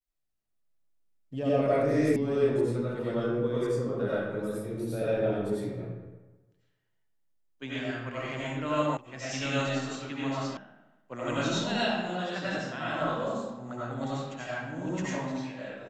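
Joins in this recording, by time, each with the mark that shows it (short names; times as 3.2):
2.16 sound cut off
8.97 sound cut off
10.57 sound cut off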